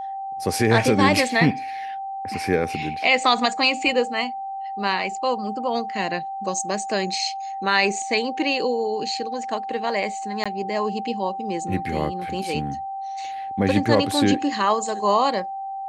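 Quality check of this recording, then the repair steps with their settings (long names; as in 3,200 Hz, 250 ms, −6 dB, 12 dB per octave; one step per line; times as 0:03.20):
whistle 780 Hz −28 dBFS
0:10.44–0:10.46: drop-out 16 ms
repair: notch filter 780 Hz, Q 30
repair the gap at 0:10.44, 16 ms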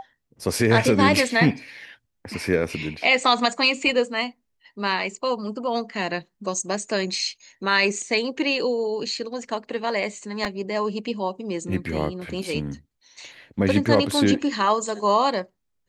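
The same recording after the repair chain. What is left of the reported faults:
none of them is left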